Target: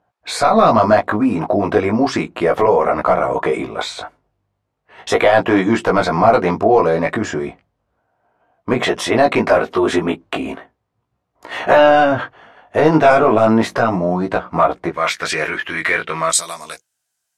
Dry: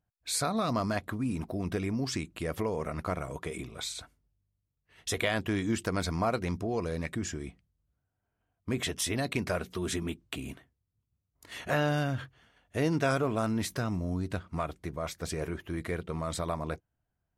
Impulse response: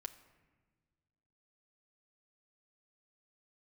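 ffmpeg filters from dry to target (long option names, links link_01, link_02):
-af "asetnsamples=nb_out_samples=441:pad=0,asendcmd='14.9 bandpass f 2000;16.3 bandpass f 7600',bandpass=frequency=780:width_type=q:width=1.3:csg=0,apsyclip=31.5dB,flanger=delay=16.5:depth=2.8:speed=0.35,volume=-2dB"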